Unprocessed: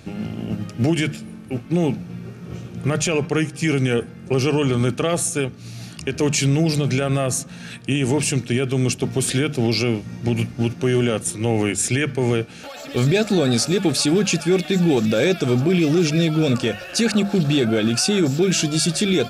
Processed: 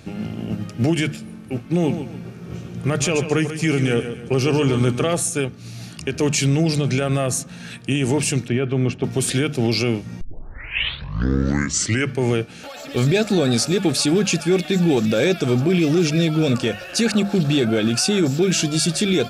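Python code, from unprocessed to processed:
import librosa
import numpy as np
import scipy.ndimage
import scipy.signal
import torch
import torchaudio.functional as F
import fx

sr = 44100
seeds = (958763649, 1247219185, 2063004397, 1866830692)

y = fx.echo_feedback(x, sr, ms=139, feedback_pct=35, wet_db=-10.0, at=(1.84, 5.13), fade=0.02)
y = fx.lowpass(y, sr, hz=11000.0, slope=24, at=(6.55, 6.98))
y = fx.lowpass(y, sr, hz=2500.0, slope=12, at=(8.48, 9.04))
y = fx.edit(y, sr, fx.tape_start(start_s=10.21, length_s=1.94), tone=tone)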